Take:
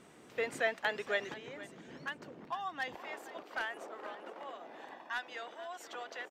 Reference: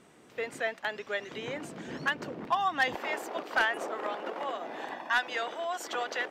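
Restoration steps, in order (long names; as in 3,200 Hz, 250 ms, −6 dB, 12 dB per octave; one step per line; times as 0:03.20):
echo removal 470 ms −16 dB
level 0 dB, from 0:01.34 +11 dB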